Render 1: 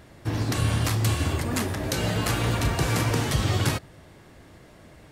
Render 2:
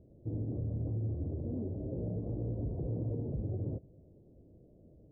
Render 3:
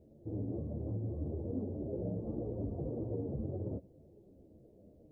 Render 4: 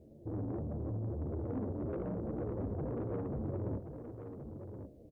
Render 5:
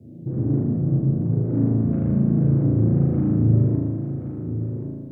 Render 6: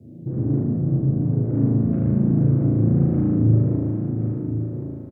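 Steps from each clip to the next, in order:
steep low-pass 560 Hz 36 dB/octave; peak limiter -20.5 dBFS, peak gain reduction 6.5 dB; trim -8 dB
bass shelf 180 Hz -9 dB; three-phase chorus; trim +6.5 dB
valve stage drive 37 dB, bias 0.25; on a send: delay 1075 ms -8.5 dB; on the sum: trim +4 dB
frequency shift +21 Hz; graphic EQ 125/250/500/1000 Hz +11/+9/-4/-8 dB; spring tank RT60 1.6 s, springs 36 ms, chirp 25 ms, DRR -5 dB; trim +3.5 dB
delay 699 ms -8.5 dB

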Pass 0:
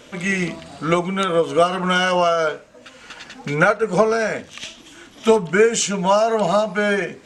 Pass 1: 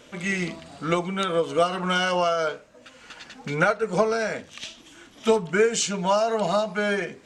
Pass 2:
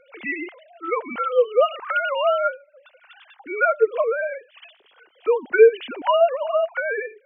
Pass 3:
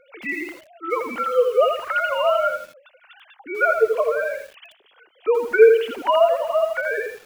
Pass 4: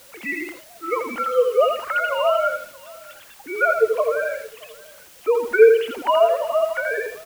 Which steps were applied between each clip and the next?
dynamic bell 4.3 kHz, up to +5 dB, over -42 dBFS, Q 2.3; trim -5.5 dB
formants replaced by sine waves; trim +3 dB
bit-crushed delay 82 ms, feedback 35%, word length 7-bit, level -5.5 dB
word length cut 8-bit, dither triangular; delay 625 ms -23 dB

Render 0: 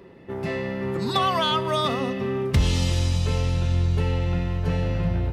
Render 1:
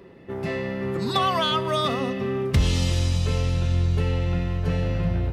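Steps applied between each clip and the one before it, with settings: band-stop 900 Hz, Q 15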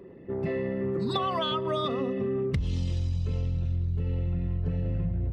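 resonances exaggerated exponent 1.5; compression, threshold -25 dBFS, peak gain reduction 10 dB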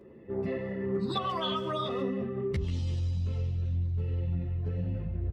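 speakerphone echo 140 ms, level -11 dB; three-phase chorus

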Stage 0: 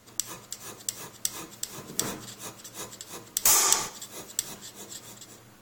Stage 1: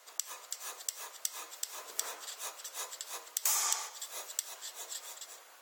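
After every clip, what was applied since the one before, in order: high-pass 560 Hz 24 dB/octave; compression 2:1, threshold -36 dBFS, peak gain reduction 11.5 dB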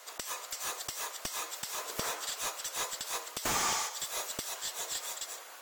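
slew-rate limiter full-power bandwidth 66 Hz; trim +7.5 dB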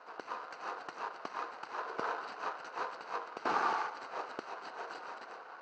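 median filter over 25 samples; cabinet simulation 430–4500 Hz, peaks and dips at 590 Hz -8 dB, 1.5 kHz +9 dB, 2.3 kHz -4 dB, 3.4 kHz -10 dB; trim +7.5 dB

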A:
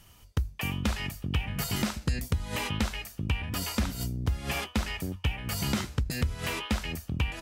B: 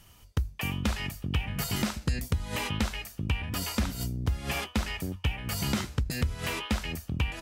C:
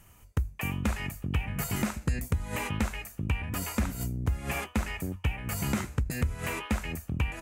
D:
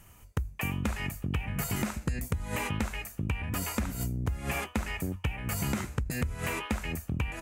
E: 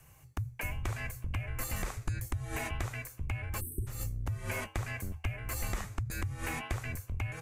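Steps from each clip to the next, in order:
no audible change
high-order bell 4.1 kHz -9 dB 1.1 oct
compression, threshold -28 dBFS, peak gain reduction 6 dB; trim +1.5 dB
frequency shift -170 Hz; spectral selection erased 3.61–3.87 s, 440–8000 Hz; trim -3.5 dB

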